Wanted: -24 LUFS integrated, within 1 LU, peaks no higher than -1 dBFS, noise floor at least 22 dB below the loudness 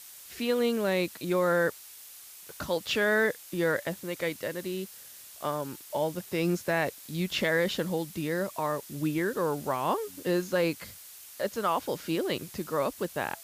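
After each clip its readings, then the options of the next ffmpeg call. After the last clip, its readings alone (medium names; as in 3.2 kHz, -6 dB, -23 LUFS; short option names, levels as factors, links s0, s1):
noise floor -49 dBFS; noise floor target -52 dBFS; loudness -30.0 LUFS; peak level -15.0 dBFS; loudness target -24.0 LUFS
-> -af "afftdn=nr=6:nf=-49"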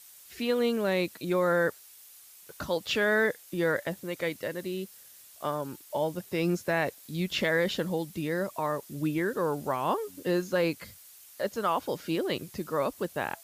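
noise floor -53 dBFS; loudness -30.0 LUFS; peak level -15.0 dBFS; loudness target -24.0 LUFS
-> -af "volume=2"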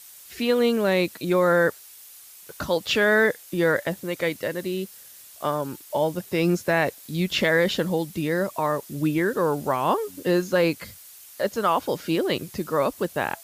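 loudness -24.0 LUFS; peak level -9.0 dBFS; noise floor -47 dBFS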